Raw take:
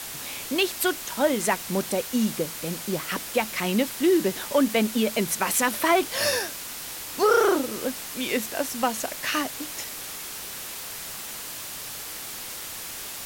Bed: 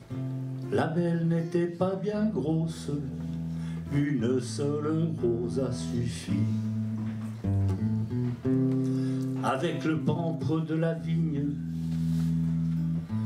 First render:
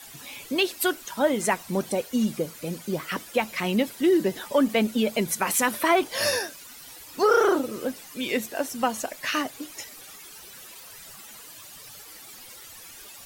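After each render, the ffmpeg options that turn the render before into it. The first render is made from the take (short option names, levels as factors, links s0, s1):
-af "afftdn=nr=13:nf=-37"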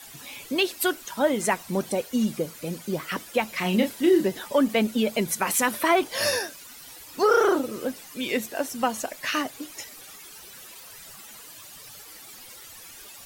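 -filter_complex "[0:a]asettb=1/sr,asplit=3[s0][s1][s2];[s0]atrim=end=3.574[s3];[s1]atrim=start=3.57:end=4.27,asetpts=PTS-STARTPTS,afade=t=in:d=0.004:c=qsin,afade=t=out:st=0.696:d=0.004:c=qsin,asplit=2[s4][s5];[s5]adelay=32,volume=0.531[s6];[s4][s6]amix=inputs=2:normalize=0,atrim=end_sample=30870[s7];[s2]atrim=start=4.266[s8];[s3][s7]acrossfade=d=0.004:c1=hsin:c2=qsin[s9];[s9][s8]acrossfade=d=0.004:c1=qsin:c2=hsin"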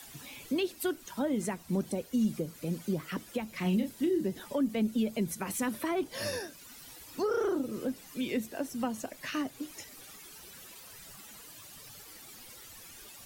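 -filter_complex "[0:a]acrossover=split=350[s0][s1];[s1]acompressor=threshold=0.00141:ratio=1.5[s2];[s0][s2]amix=inputs=2:normalize=0,acrossover=split=120|4500[s3][s4][s5];[s4]alimiter=limit=0.075:level=0:latency=1:release=253[s6];[s3][s6][s5]amix=inputs=3:normalize=0"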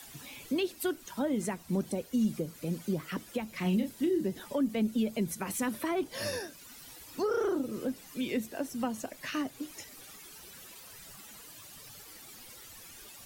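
-af anull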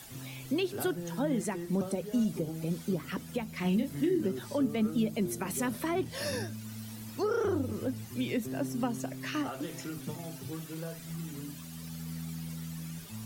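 -filter_complex "[1:a]volume=0.237[s0];[0:a][s0]amix=inputs=2:normalize=0"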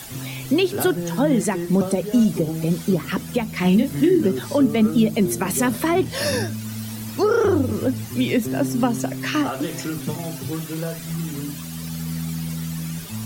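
-af "volume=3.98"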